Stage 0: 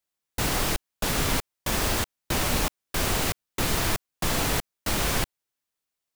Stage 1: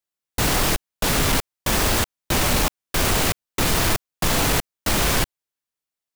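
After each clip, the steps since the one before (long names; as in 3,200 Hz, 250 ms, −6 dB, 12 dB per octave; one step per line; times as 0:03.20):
leveller curve on the samples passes 2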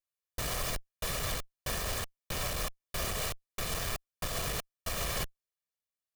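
lower of the sound and its delayed copy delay 1.7 ms
brickwall limiter −20.5 dBFS, peak gain reduction 9 dB
level −6 dB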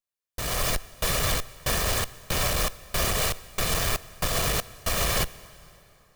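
automatic gain control gain up to 10 dB
dense smooth reverb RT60 3.1 s, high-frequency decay 0.8×, DRR 17.5 dB
level −1 dB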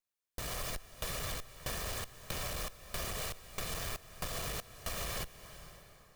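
downward compressor 3 to 1, threshold −39 dBFS, peak gain reduction 13 dB
level −1.5 dB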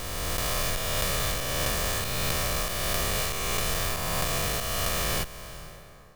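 peak hold with a rise ahead of every peak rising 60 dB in 2.96 s
one half of a high-frequency compander decoder only
level +7 dB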